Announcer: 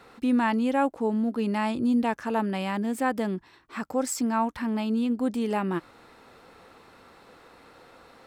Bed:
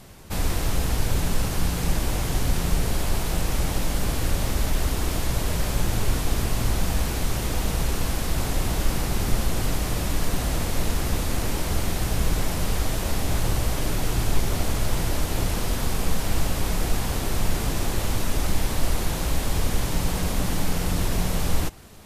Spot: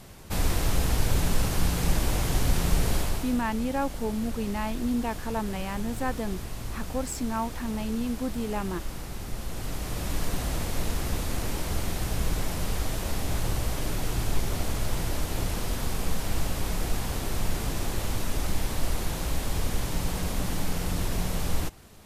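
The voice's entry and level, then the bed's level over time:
3.00 s, -4.5 dB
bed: 2.97 s -1 dB
3.43 s -12 dB
9.32 s -12 dB
10.15 s -4.5 dB

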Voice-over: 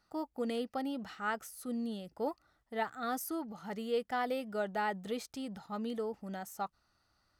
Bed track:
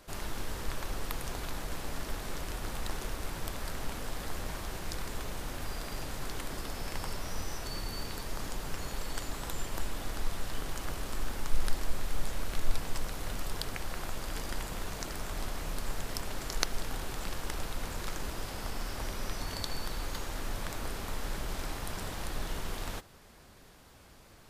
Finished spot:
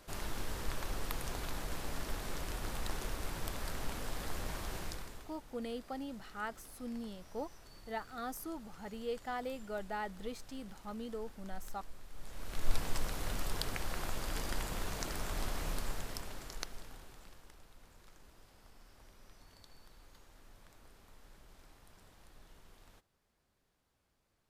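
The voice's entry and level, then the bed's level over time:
5.15 s, -5.5 dB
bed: 4.82 s -2.5 dB
5.38 s -18.5 dB
12.10 s -18.5 dB
12.74 s -1 dB
15.71 s -1 dB
17.61 s -23 dB

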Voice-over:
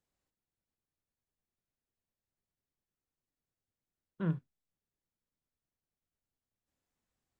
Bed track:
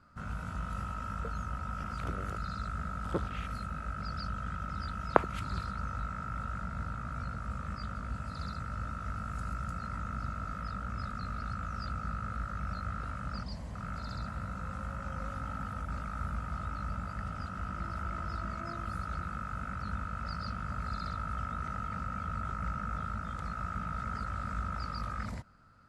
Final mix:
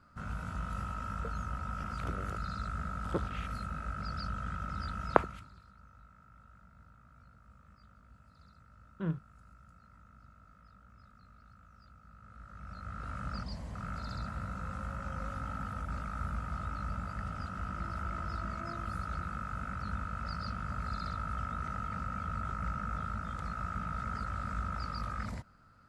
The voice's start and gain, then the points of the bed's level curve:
4.80 s, -1.5 dB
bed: 5.20 s -0.5 dB
5.54 s -21 dB
12.06 s -21 dB
13.18 s -0.5 dB

